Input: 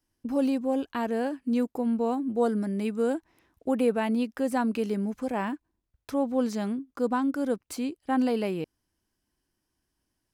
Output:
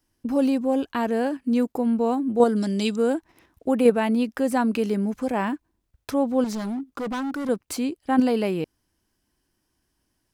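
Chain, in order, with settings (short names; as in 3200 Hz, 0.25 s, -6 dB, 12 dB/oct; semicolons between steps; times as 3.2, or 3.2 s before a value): 2.56–2.96 band shelf 4800 Hz +14.5 dB; in parallel at -1 dB: level quantiser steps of 22 dB; 6.44–7.49 on the sum: hard clip -29.5 dBFS, distortion -15 dB; gain +3.5 dB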